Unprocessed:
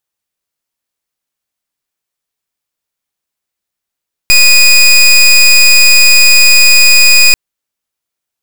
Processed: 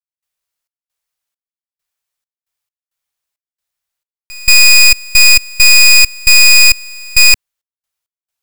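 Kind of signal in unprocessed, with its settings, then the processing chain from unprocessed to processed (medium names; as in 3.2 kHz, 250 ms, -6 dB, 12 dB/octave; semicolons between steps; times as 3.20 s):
pulse 2.48 kHz, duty 21% -4 dBFS 3.04 s
peaking EQ 250 Hz -14 dB 1.3 oct; trance gate ".xx.xx..xx.x" 67 bpm -24 dB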